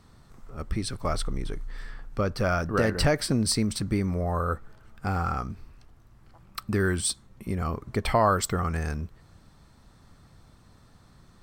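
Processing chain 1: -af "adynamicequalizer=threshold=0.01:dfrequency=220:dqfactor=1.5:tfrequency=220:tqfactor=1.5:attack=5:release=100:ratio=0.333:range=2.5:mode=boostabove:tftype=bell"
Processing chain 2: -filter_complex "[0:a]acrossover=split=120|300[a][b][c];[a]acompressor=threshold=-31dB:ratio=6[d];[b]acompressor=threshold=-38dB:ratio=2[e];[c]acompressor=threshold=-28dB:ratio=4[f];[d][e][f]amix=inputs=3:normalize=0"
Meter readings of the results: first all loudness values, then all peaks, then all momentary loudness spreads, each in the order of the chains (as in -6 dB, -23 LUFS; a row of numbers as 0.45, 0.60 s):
-26.5, -32.0 LUFS; -9.5, -12.5 dBFS; 17, 12 LU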